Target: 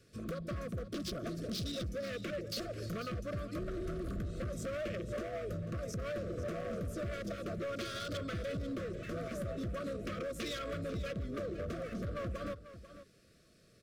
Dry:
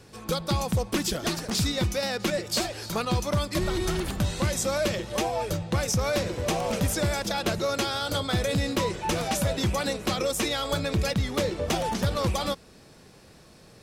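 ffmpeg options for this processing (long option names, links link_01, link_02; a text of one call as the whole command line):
ffmpeg -i in.wav -af "afwtdn=0.0251,acompressor=threshold=-36dB:ratio=12,asoftclip=type=hard:threshold=-39dB,asuperstop=centerf=880:order=20:qfactor=2.2,aecho=1:1:492:0.211,volume=3.5dB" out.wav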